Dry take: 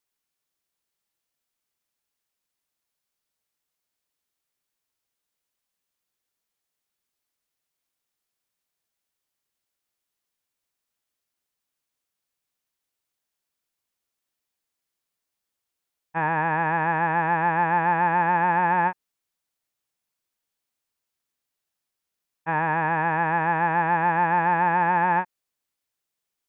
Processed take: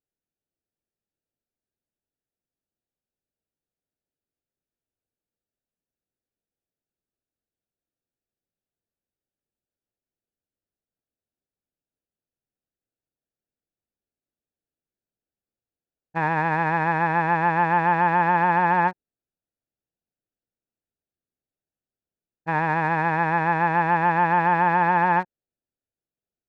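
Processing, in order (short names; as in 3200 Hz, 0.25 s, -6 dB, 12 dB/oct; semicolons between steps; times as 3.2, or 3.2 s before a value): Wiener smoothing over 41 samples; gain +2.5 dB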